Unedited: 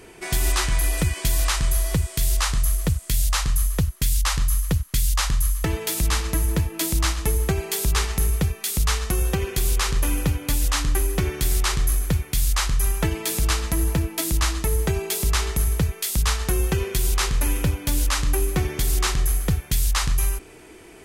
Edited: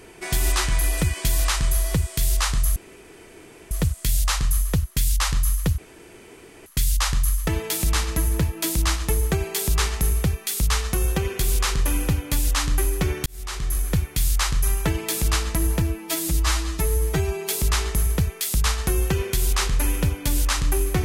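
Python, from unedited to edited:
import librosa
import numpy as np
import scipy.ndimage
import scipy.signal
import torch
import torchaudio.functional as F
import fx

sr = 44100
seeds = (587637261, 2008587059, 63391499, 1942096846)

y = fx.edit(x, sr, fx.insert_room_tone(at_s=2.76, length_s=0.95),
    fx.insert_room_tone(at_s=4.83, length_s=0.88),
    fx.fade_in_span(start_s=11.43, length_s=0.67),
    fx.stretch_span(start_s=13.99, length_s=1.11, factor=1.5), tone=tone)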